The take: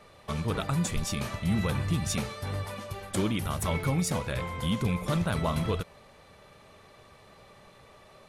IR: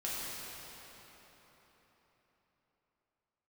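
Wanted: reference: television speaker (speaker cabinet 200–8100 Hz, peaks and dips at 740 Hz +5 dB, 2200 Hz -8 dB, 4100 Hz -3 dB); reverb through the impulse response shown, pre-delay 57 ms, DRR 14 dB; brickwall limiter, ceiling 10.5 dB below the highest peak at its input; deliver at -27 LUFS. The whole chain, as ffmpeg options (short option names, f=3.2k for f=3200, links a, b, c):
-filter_complex "[0:a]alimiter=level_in=4dB:limit=-24dB:level=0:latency=1,volume=-4dB,asplit=2[a][b];[1:a]atrim=start_sample=2205,adelay=57[c];[b][c]afir=irnorm=-1:irlink=0,volume=-18.5dB[d];[a][d]amix=inputs=2:normalize=0,highpass=f=200:w=0.5412,highpass=f=200:w=1.3066,equalizer=f=740:t=q:w=4:g=5,equalizer=f=2.2k:t=q:w=4:g=-8,equalizer=f=4.1k:t=q:w=4:g=-3,lowpass=f=8.1k:w=0.5412,lowpass=f=8.1k:w=1.3066,volume=13dB"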